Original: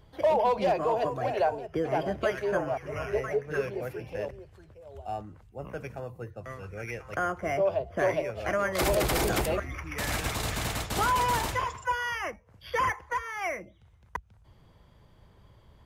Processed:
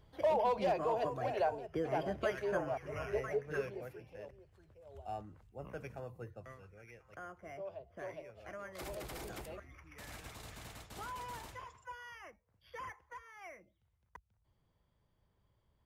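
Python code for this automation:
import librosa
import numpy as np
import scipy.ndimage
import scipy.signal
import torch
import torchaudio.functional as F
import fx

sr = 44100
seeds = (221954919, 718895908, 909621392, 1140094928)

y = fx.gain(x, sr, db=fx.line((3.55, -7.0), (4.16, -16.0), (4.95, -7.5), (6.34, -7.5), (6.81, -19.0)))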